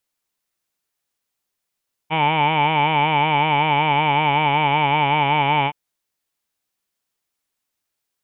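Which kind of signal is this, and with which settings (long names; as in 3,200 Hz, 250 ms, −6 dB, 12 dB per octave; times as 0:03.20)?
vowel from formants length 3.62 s, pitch 153 Hz, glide −1 semitone, F1 880 Hz, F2 2,300 Hz, F3 3,000 Hz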